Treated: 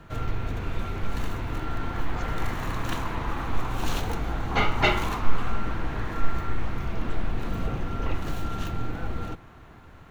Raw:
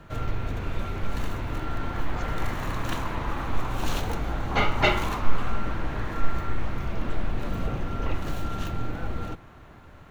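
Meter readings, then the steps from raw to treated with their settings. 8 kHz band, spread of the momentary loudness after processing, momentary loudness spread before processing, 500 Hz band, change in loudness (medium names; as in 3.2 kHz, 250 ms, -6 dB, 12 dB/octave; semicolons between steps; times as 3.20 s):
no reading, 7 LU, 7 LU, -1.0 dB, 0.0 dB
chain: band-stop 580 Hz, Q 12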